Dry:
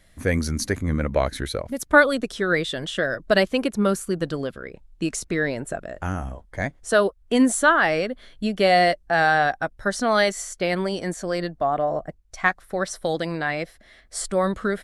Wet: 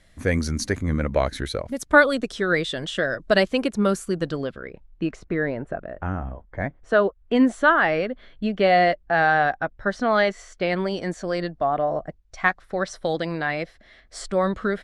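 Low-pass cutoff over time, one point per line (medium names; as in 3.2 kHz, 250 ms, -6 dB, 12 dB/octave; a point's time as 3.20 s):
4.13 s 8.8 kHz
4.67 s 3.5 kHz
5.29 s 1.8 kHz
6.61 s 1.8 kHz
7.36 s 3 kHz
10.34 s 3 kHz
11.04 s 5.2 kHz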